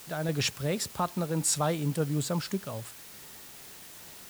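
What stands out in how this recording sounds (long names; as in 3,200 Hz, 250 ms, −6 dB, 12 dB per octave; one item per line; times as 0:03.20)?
sample-and-hold tremolo
a quantiser's noise floor 8 bits, dither triangular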